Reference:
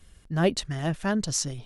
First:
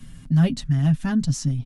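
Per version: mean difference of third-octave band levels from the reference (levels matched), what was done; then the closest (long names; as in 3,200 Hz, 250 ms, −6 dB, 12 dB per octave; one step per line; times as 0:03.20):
7.5 dB: low shelf with overshoot 300 Hz +10 dB, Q 3
comb filter 7.4 ms, depth 72%
multiband upward and downward compressor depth 40%
level −6 dB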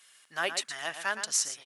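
11.0 dB: high-pass filter 1,300 Hz 12 dB per octave
dynamic equaliser 4,500 Hz, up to −7 dB, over −43 dBFS, Q 0.92
slap from a distant wall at 20 metres, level −9 dB
level +5 dB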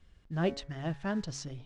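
3.0 dB: hum removal 139.5 Hz, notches 16
noise that follows the level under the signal 25 dB
high-frequency loss of the air 130 metres
level −6.5 dB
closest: third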